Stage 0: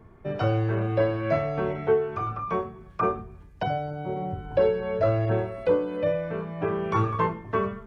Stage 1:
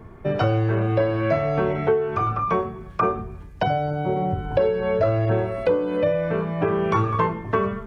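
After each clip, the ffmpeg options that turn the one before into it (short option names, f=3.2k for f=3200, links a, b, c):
-af "acompressor=threshold=-27dB:ratio=3,volume=8.5dB"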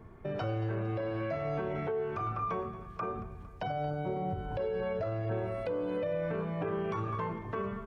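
-af "alimiter=limit=-17dB:level=0:latency=1:release=75,aecho=1:1:228|456|684|912|1140:0.15|0.0868|0.0503|0.0292|0.0169,volume=-9dB"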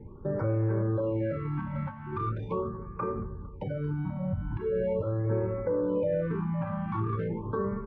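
-af "asuperstop=centerf=690:order=12:qfactor=4.2,adynamicsmooth=sensitivity=0.5:basefreq=1.2k,afftfilt=real='re*(1-between(b*sr/1024,390*pow(3800/390,0.5+0.5*sin(2*PI*0.41*pts/sr))/1.41,390*pow(3800/390,0.5+0.5*sin(2*PI*0.41*pts/sr))*1.41))':imag='im*(1-between(b*sr/1024,390*pow(3800/390,0.5+0.5*sin(2*PI*0.41*pts/sr))/1.41,390*pow(3800/390,0.5+0.5*sin(2*PI*0.41*pts/sr))*1.41))':win_size=1024:overlap=0.75,volume=6.5dB"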